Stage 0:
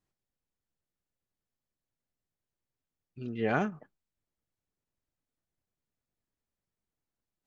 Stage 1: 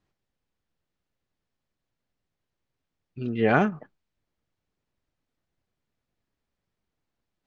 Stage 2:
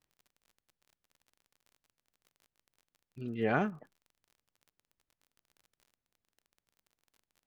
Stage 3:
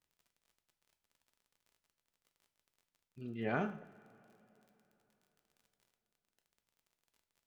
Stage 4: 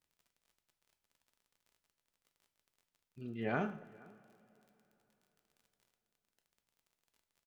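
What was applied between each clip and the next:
low-pass filter 4,600 Hz; level +8 dB
surface crackle 37 per second −41 dBFS; level −9 dB
coupled-rooms reverb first 0.5 s, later 3.7 s, from −22 dB, DRR 6.5 dB; level −6 dB
slap from a distant wall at 82 metres, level −24 dB

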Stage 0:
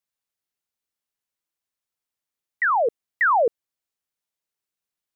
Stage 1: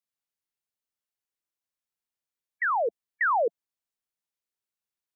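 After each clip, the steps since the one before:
gate on every frequency bin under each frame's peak −25 dB strong
level −5.5 dB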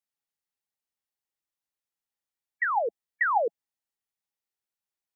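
hollow resonant body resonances 820/1,900 Hz, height 9 dB, ringing for 80 ms
level −2 dB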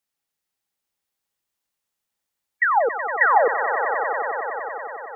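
echo that builds up and dies away 93 ms, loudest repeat 5, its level −11.5 dB
level +7.5 dB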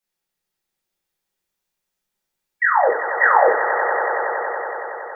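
rectangular room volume 40 cubic metres, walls mixed, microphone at 1.1 metres
level −3.5 dB

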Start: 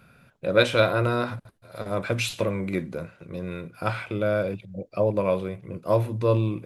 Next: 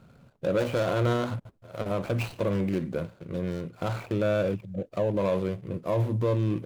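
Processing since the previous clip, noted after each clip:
running median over 25 samples
brickwall limiter −20.5 dBFS, peak gain reduction 10 dB
level +2.5 dB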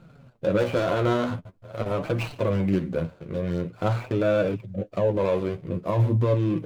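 high-shelf EQ 6,100 Hz −7 dB
flanger 0.46 Hz, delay 5.7 ms, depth 8.3 ms, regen +28%
level +7 dB

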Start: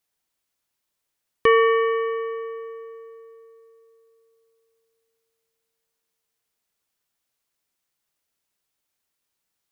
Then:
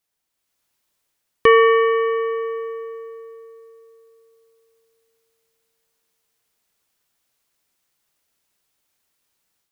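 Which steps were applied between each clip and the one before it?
automatic gain control gain up to 7 dB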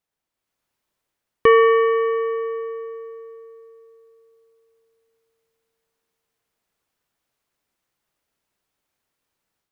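high-shelf EQ 2,700 Hz −9.5 dB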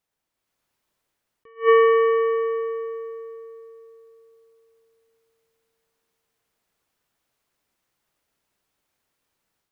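tuned comb filter 73 Hz, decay 1.6 s, harmonics all, mix 30%
level that may rise only so fast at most 270 dB per second
level +5 dB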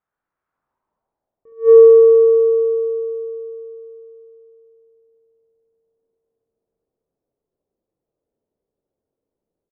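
low-pass filter sweep 1,400 Hz → 480 Hz, 0:00.43–0:01.74
on a send: ambience of single reflections 22 ms −9.5 dB, 50 ms −9.5 dB, 68 ms −5 dB
on the sum: level −3 dB

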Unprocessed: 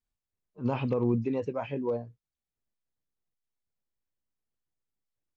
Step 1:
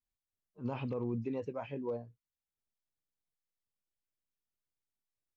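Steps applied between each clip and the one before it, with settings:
brickwall limiter −19.5 dBFS, peak gain reduction 3.5 dB
level −7 dB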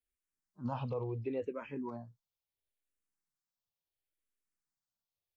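dynamic equaliser 980 Hz, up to +3 dB, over −52 dBFS, Q 0.71
frequency shifter mixed with the dry sound −0.72 Hz
level +1.5 dB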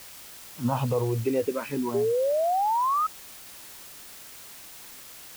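in parallel at −4 dB: bit-depth reduction 8 bits, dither triangular
on the sum: sound drawn into the spectrogram rise, 0:01.94–0:03.07, 390–1,300 Hz −31 dBFS
level +7 dB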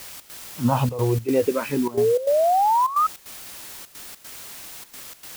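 gate pattern "xx.xxxxxx." 152 BPM −12 dB
level +6 dB

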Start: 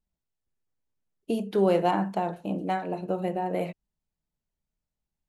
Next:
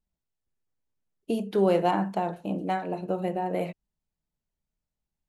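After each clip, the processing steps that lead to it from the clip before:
no processing that can be heard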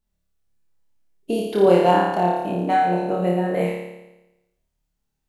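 flutter between parallel walls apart 4.8 metres, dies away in 0.98 s
level +3.5 dB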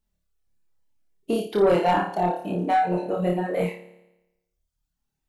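soft clipping −11 dBFS, distortion −15 dB
reverb reduction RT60 0.99 s

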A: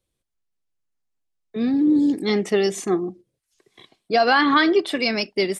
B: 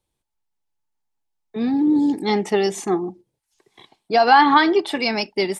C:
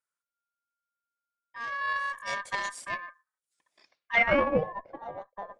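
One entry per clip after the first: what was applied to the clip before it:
parametric band 870 Hz +15 dB 0.24 octaves; notch filter 530 Hz, Q 15
ring modulation 1,400 Hz; harmonic generator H 2 −11 dB, 7 −24 dB, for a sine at −2 dBFS; low-pass filter sweep 9,300 Hz → 610 Hz, 0:03.74–0:04.58; level −8 dB

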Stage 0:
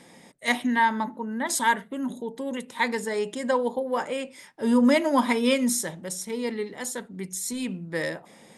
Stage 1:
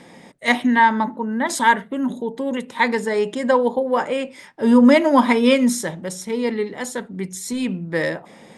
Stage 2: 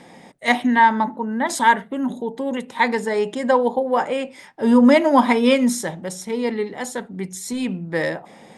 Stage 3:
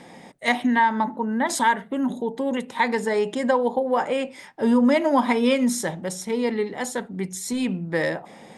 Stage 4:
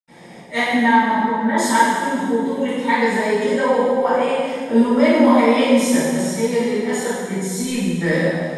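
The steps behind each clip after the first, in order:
low-pass filter 3,400 Hz 6 dB per octave; level +7.5 dB
parametric band 770 Hz +5.5 dB 0.35 octaves; level −1 dB
downward compressor 2 to 1, threshold −19 dBFS, peak gain reduction 6 dB
convolution reverb RT60 1.8 s, pre-delay 77 ms; level +3.5 dB

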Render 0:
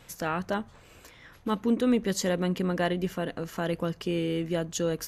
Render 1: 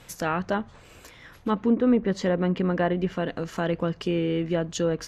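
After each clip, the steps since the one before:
treble cut that deepens with the level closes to 1,600 Hz, closed at −22 dBFS
level +3.5 dB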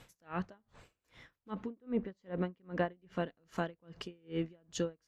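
tremolo with a sine in dB 2.5 Hz, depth 36 dB
level −6 dB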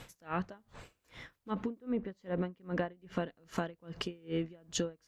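downward compressor 6 to 1, threshold −38 dBFS, peak gain reduction 11 dB
level +7.5 dB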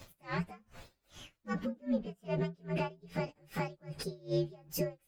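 partials spread apart or drawn together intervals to 122%
level +3 dB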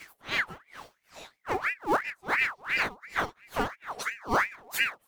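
in parallel at −9.5 dB: sample-and-hold swept by an LFO 28×, swing 100% 1.6 Hz
on the sum: ring modulator whose carrier an LFO sweeps 1,400 Hz, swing 60%, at 2.9 Hz
level +7 dB

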